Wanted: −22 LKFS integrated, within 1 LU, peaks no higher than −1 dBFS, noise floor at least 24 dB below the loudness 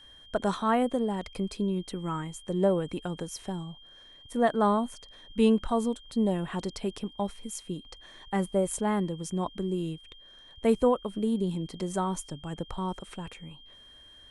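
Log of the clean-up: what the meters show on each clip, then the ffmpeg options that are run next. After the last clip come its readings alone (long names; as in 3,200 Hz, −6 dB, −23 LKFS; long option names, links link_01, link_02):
interfering tone 3,200 Hz; level of the tone −51 dBFS; integrated loudness −30.0 LKFS; sample peak −11.5 dBFS; target loudness −22.0 LKFS
→ -af "bandreject=frequency=3200:width=30"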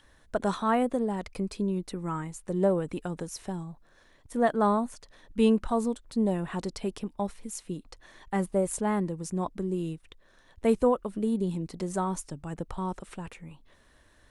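interfering tone none found; integrated loudness −30.0 LKFS; sample peak −11.5 dBFS; target loudness −22.0 LKFS
→ -af "volume=8dB"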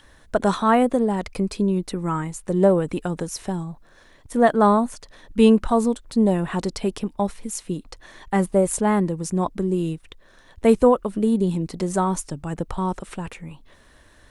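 integrated loudness −22.0 LKFS; sample peak −3.5 dBFS; background noise floor −53 dBFS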